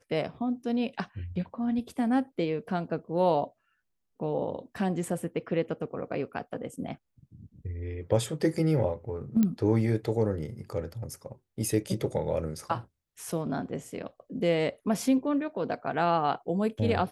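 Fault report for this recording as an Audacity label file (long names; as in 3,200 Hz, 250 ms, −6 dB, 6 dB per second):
9.430000	9.430000	click −14 dBFS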